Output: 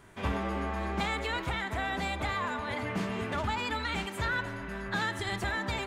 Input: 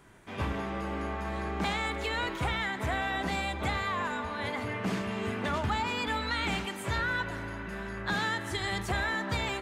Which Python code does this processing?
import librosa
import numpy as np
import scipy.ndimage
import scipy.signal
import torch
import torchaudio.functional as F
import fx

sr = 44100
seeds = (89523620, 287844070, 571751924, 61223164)

y = fx.rider(x, sr, range_db=3, speed_s=2.0)
y = fx.stretch_vocoder(y, sr, factor=0.61)